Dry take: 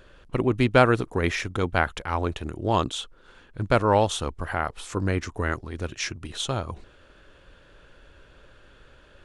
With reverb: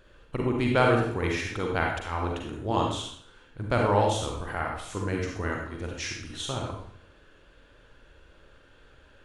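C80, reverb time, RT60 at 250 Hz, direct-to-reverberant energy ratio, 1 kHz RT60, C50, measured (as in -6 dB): 6.0 dB, 0.65 s, 0.70 s, -0.5 dB, 0.60 s, 2.0 dB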